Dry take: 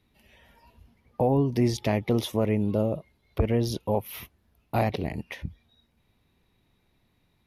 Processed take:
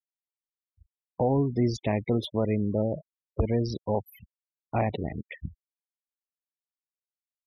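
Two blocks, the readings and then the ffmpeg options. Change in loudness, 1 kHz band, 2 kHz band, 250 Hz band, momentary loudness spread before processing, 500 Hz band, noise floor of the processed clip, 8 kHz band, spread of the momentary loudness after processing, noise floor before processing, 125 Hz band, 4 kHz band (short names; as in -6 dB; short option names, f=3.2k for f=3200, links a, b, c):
-1.5 dB, -1.5 dB, -3.5 dB, -1.5 dB, 15 LU, -1.5 dB, under -85 dBFS, n/a, 14 LU, -70 dBFS, -1.5 dB, -4.0 dB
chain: -af "afftfilt=real='re*gte(hypot(re,im),0.0282)':imag='im*gte(hypot(re,im),0.0282)':win_size=1024:overlap=0.75,volume=-1.5dB"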